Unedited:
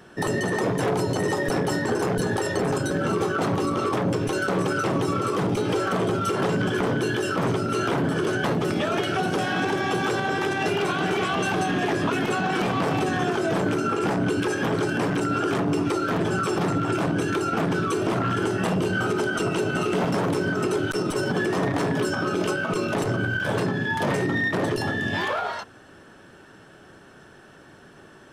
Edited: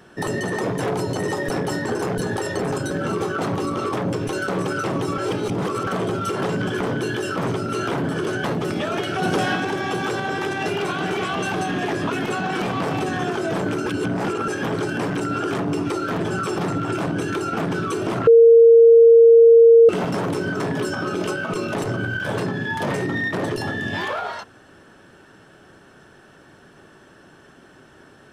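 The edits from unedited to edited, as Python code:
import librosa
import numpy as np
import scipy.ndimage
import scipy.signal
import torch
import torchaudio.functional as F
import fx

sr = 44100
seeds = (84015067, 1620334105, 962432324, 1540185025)

y = fx.edit(x, sr, fx.reverse_span(start_s=5.18, length_s=0.69),
    fx.clip_gain(start_s=9.22, length_s=0.34, db=4.0),
    fx.reverse_span(start_s=13.86, length_s=0.62),
    fx.bleep(start_s=18.27, length_s=1.62, hz=461.0, db=-6.5),
    fx.cut(start_s=20.6, length_s=1.2), tone=tone)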